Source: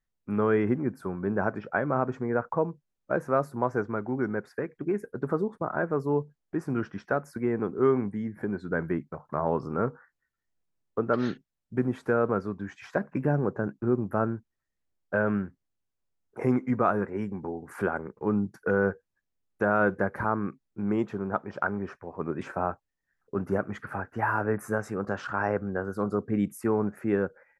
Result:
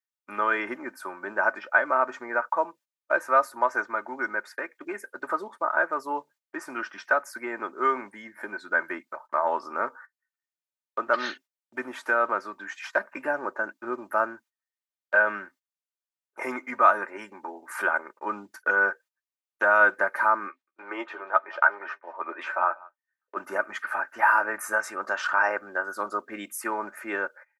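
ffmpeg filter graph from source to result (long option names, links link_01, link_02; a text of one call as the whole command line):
ffmpeg -i in.wav -filter_complex "[0:a]asettb=1/sr,asplit=3[link_01][link_02][link_03];[link_01]atrim=end=20.484[link_04];[link_02]atrim=start=20.48:end=23.37,asetpts=PTS-STARTPTS,afade=type=in:duration=0.004:curve=qsin,afade=type=out:start_time=2.886:duration=0.004:curve=qsin,acrossover=split=300 3900:gain=0.0794 1 0.126[link_05][link_06][link_07];[link_05][link_06][link_07]amix=inputs=3:normalize=0,asplit=2[link_08][link_09];[link_09]adelay=12,volume=-7dB[link_10];[link_08][link_10]amix=inputs=2:normalize=0,atrim=end_sample=127449,aecho=1:1:191:0.0668,atrim=end_sample=127449[link_11];[link_03]atrim=start=23.366[link_12];[link_04][link_11]acrossfade=duration=0.004:curve1=hsin:curve2=qsin[link_13];[link_13][link_12]acrossfade=duration=0.004:curve1=qsin:curve2=hsin,agate=range=-16dB:threshold=-47dB:ratio=16:detection=peak,highpass=1000,aecho=1:1:3.3:0.63,volume=8.5dB" out.wav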